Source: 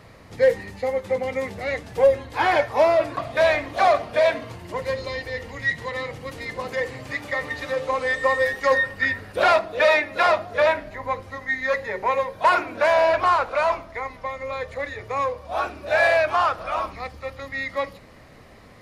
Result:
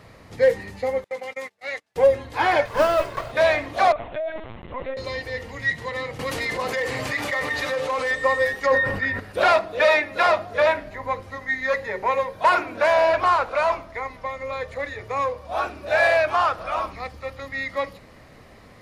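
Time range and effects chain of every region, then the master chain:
0:01.04–0:01.96: noise gate −31 dBFS, range −29 dB + high-pass filter 1,200 Hz 6 dB per octave
0:02.65–0:03.32: lower of the sound and its delayed copy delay 1.9 ms + noise that follows the level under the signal 30 dB
0:03.92–0:04.97: downward compressor 10 to 1, threshold −24 dBFS + notch comb filter 440 Hz + linear-prediction vocoder at 8 kHz pitch kept
0:06.19–0:08.11: gain into a clipping stage and back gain 18 dB + low-shelf EQ 360 Hz −7.5 dB + envelope flattener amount 70%
0:08.66–0:09.20: high-shelf EQ 2,600 Hz −9.5 dB + level that may fall only so fast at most 48 dB per second
whole clip: no processing

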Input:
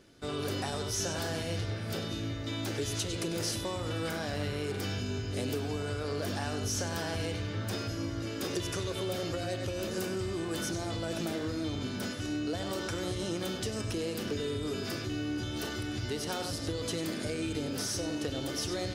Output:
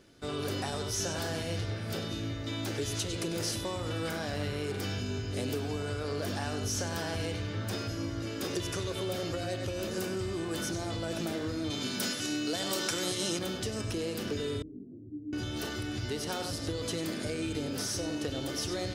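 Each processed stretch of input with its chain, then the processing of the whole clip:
0:11.70–0:13.39: high-pass filter 130 Hz 24 dB per octave + high-shelf EQ 2,400 Hz +11 dB
0:14.62–0:15.33: transistor ladder low-pass 330 Hz, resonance 55% + micro pitch shift up and down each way 43 cents
whole clip: no processing

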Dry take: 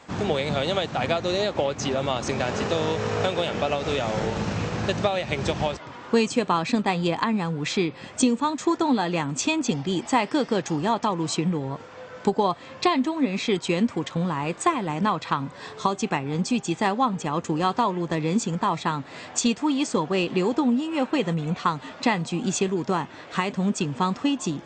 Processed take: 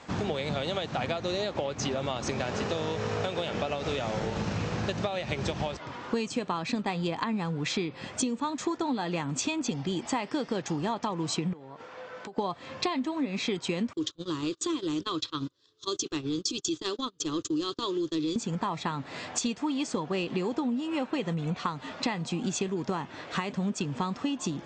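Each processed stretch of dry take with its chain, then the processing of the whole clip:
0:11.53–0:12.38: high-shelf EQ 5,700 Hz −10.5 dB + downward compressor, threshold −35 dBFS + high-pass filter 440 Hz 6 dB per octave
0:13.93–0:18.36: transient designer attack −10 dB, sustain 0 dB + drawn EQ curve 120 Hz 0 dB, 210 Hz −18 dB, 310 Hz +9 dB, 800 Hz −20 dB, 1,200 Hz −3 dB, 2,200 Hz −12 dB, 3,400 Hz +9 dB, 7,200 Hz +8 dB, 11,000 Hz −21 dB + noise gate −33 dBFS, range −31 dB
whole clip: low-pass filter 6,700 Hz 12 dB per octave; bass and treble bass +1 dB, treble +3 dB; downward compressor 4 to 1, threshold −28 dBFS

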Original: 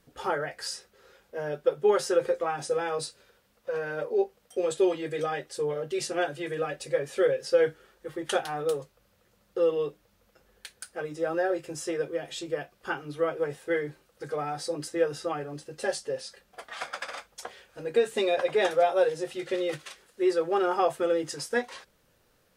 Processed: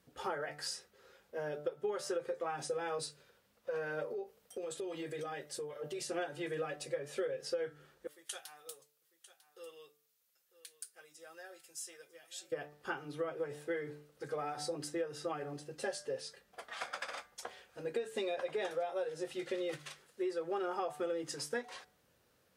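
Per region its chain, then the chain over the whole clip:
0:04.10–0:06.10: high-shelf EQ 8,900 Hz +6.5 dB + downward compressor 10 to 1, threshold −32 dBFS
0:08.07–0:12.52: first-order pre-emphasis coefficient 0.97 + single-tap delay 948 ms −16 dB
whole clip: high-pass filter 64 Hz; hum removal 147.9 Hz, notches 14; downward compressor 10 to 1, threshold −28 dBFS; level −5 dB

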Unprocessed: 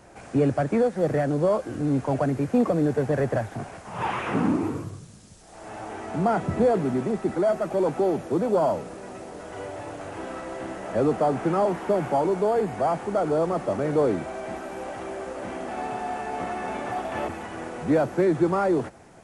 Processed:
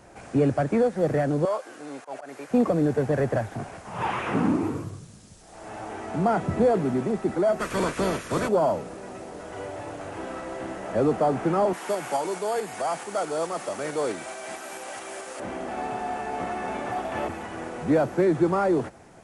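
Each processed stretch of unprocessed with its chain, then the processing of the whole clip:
0:01.45–0:02.51: high-pass filter 690 Hz + volume swells 123 ms
0:07.59–0:08.47: ceiling on every frequency bin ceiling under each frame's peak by 22 dB + parametric band 810 Hz −14 dB 0.3 octaves + one half of a high-frequency compander decoder only
0:11.73–0:15.40: shaped tremolo saw up 4.6 Hz, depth 30% + spectral tilt +4 dB per octave
whole clip: no processing

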